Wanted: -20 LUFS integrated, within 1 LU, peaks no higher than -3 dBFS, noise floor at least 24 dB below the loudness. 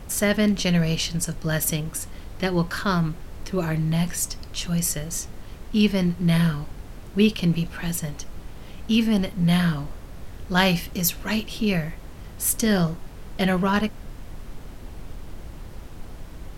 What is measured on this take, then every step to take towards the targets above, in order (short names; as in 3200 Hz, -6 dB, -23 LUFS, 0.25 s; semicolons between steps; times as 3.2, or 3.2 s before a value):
noise floor -40 dBFS; noise floor target -48 dBFS; loudness -24.0 LUFS; peak -4.5 dBFS; loudness target -20.0 LUFS
-> noise print and reduce 8 dB; gain +4 dB; limiter -3 dBFS